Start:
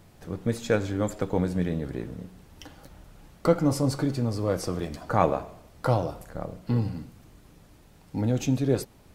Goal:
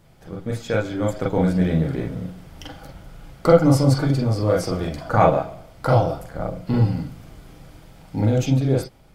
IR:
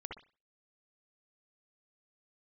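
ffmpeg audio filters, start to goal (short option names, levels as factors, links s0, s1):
-filter_complex "[0:a]dynaudnorm=f=300:g=9:m=3.76[s0];[1:a]atrim=start_sample=2205,atrim=end_sample=3528,asetrate=70560,aresample=44100[s1];[s0][s1]afir=irnorm=-1:irlink=0,volume=2.37"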